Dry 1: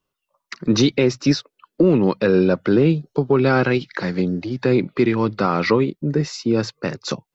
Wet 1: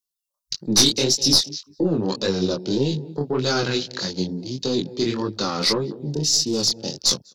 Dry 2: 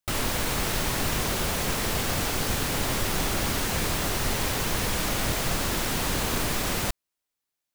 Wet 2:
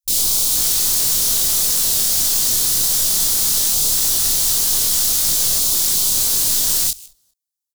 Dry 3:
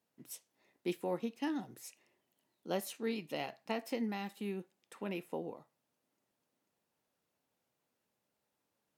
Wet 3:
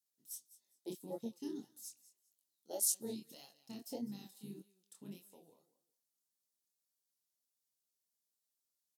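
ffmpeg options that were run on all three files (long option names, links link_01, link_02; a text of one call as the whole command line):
ffmpeg -i in.wav -filter_complex "[0:a]aexciter=amount=11.9:drive=4.2:freq=3500,asplit=2[link_01][link_02];[link_02]aecho=0:1:201|402:0.15|0.0359[link_03];[link_01][link_03]amix=inputs=2:normalize=0,aeval=exprs='2.82*(cos(1*acos(clip(val(0)/2.82,-1,1)))-cos(1*PI/2))+0.224*(cos(2*acos(clip(val(0)/2.82,-1,1)))-cos(2*PI/2))+1.26*(cos(5*acos(clip(val(0)/2.82,-1,1)))-cos(5*PI/2))+1.26*(cos(6*acos(clip(val(0)/2.82,-1,1)))-cos(6*PI/2))+0.562*(cos(8*acos(clip(val(0)/2.82,-1,1)))-cos(8*PI/2))':channel_layout=same,afwtdn=0.141,flanger=delay=20:depth=7.5:speed=1.7,volume=-13dB" out.wav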